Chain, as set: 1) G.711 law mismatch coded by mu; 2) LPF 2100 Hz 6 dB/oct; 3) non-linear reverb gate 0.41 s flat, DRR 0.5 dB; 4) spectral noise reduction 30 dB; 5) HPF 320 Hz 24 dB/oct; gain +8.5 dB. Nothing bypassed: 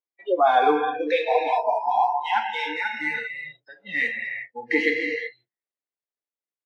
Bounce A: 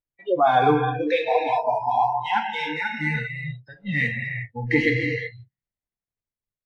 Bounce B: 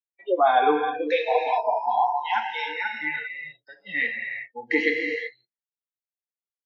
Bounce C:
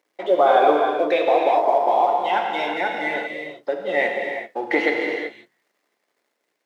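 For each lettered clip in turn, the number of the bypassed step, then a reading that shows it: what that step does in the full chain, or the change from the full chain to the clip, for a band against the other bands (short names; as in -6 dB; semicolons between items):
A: 5, 250 Hz band +5.0 dB; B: 1, distortion -22 dB; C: 4, 500 Hz band +4.0 dB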